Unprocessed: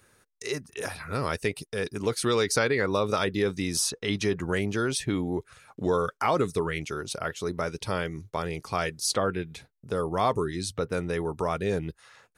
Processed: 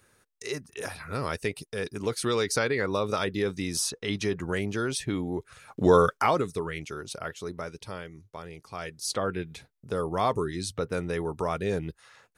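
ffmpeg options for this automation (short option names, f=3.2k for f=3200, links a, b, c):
-af "volume=16.5dB,afade=t=in:st=5.39:d=0.59:silence=0.354813,afade=t=out:st=5.98:d=0.46:silence=0.281838,afade=t=out:st=7.27:d=0.8:silence=0.473151,afade=t=in:st=8.72:d=0.7:silence=0.334965"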